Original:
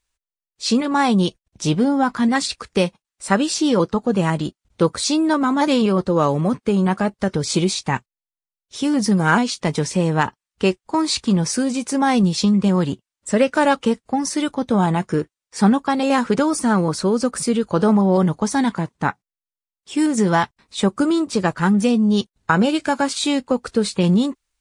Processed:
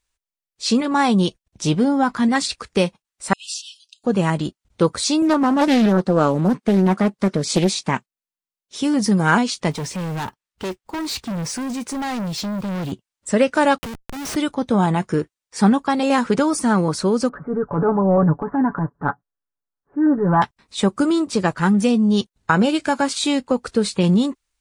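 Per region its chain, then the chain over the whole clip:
3.33–4.04 compressor 2.5:1, threshold -26 dBFS + brick-wall FIR high-pass 2500 Hz
5.22–8.79 resonant low shelf 120 Hz -11.5 dB, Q 1.5 + Doppler distortion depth 0.49 ms
9.71–12.92 high shelf 6500 Hz -6 dB + short-mantissa float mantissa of 2-bit + hard clip -23.5 dBFS
13.78–14.36 Schmitt trigger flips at -31 dBFS + compressor 5:1, threshold -30 dBFS
17.29–20.42 steep low-pass 1700 Hz 72 dB/oct + transient shaper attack -8 dB, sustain +4 dB + comb 7 ms, depth 62%
whole clip: dry

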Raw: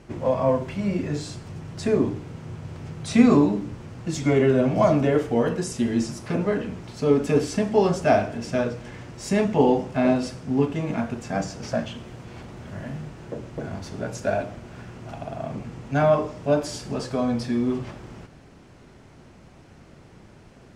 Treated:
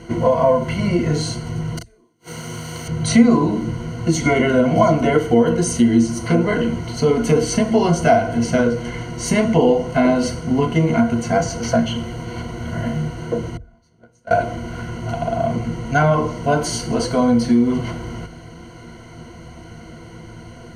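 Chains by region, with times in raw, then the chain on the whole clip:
1.77–2.88 RIAA curve recording + flipped gate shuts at -28 dBFS, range -41 dB + doubler 37 ms -4.5 dB
13.57–14.31 gate -24 dBFS, range -33 dB + compressor 2.5:1, threshold -47 dBFS + Doppler distortion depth 0.13 ms
whole clip: ripple EQ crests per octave 1.9, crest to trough 16 dB; compressor 2.5:1, threshold -21 dBFS; gain +8 dB

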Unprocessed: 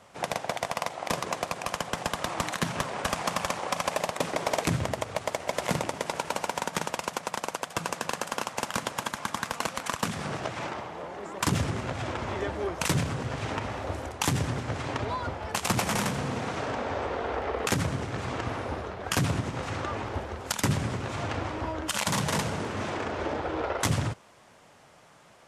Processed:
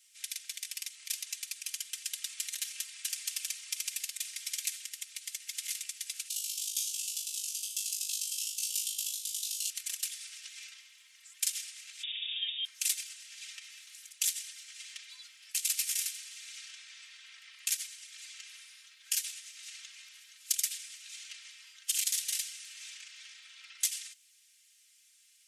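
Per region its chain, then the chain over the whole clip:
6.28–9.7 steep high-pass 2800 Hz 48 dB/oct + flutter echo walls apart 3.3 m, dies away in 0.47 s
12.03–12.65 air absorption 340 m + inverted band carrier 3600 Hz
whole clip: inverse Chebyshev high-pass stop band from 490 Hz, stop band 70 dB; differentiator; comb 3.8 ms, depth 96%

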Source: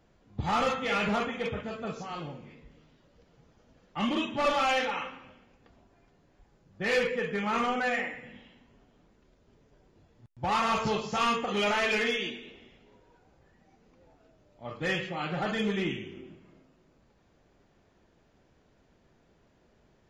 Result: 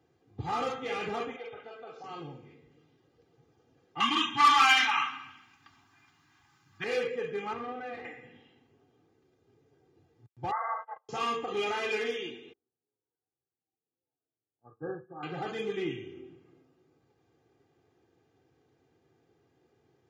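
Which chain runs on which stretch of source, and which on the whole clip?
1.36–2.04 three-band isolator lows -21 dB, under 320 Hz, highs -22 dB, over 4900 Hz + comb 1.4 ms, depth 40% + compressor 2:1, threshold -38 dBFS
4–6.84 EQ curve 290 Hz 0 dB, 510 Hz -22 dB, 980 Hz +14 dB + hard clip -7.5 dBFS
7.53–8.05 half-wave gain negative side -12 dB + tape spacing loss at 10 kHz 27 dB
10.51–11.09 brick-wall FIR band-pass 480–2100 Hz + gate -34 dBFS, range -28 dB
12.53–15.23 brick-wall FIR low-pass 1700 Hz + upward expander 2.5:1, over -51 dBFS
whole clip: HPF 110 Hz 24 dB/oct; low shelf 390 Hz +8.5 dB; comb 2.5 ms, depth 75%; gain -8.5 dB

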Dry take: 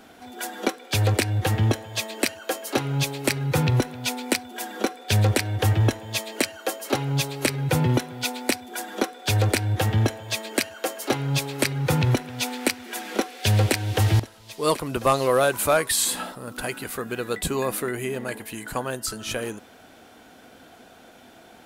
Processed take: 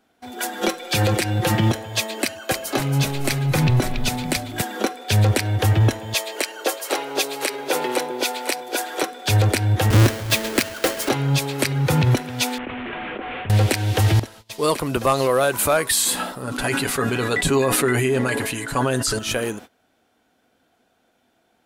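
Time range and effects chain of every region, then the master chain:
0.61–1.72 comb 5.7 ms, depth 84% + three-band squash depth 40%
2.22–4.62 notch comb 470 Hz + frequency-shifting echo 0.279 s, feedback 36%, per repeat -140 Hz, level -7 dB
6.14–9.03 HPF 360 Hz 24 dB/oct + echo with dull and thin repeats by turns 0.252 s, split 910 Hz, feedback 54%, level -4.5 dB
9.9–11.09 half-waves squared off + bell 790 Hz -5.5 dB 0.68 oct
12.58–13.5 delta modulation 16 kbps, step -27.5 dBFS + level quantiser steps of 18 dB
16.42–19.19 LPF 9700 Hz + comb 7.2 ms, depth 64% + sustainer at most 23 dB/s
whole clip: gate -43 dBFS, range -21 dB; limiter -15 dBFS; gain +5.5 dB

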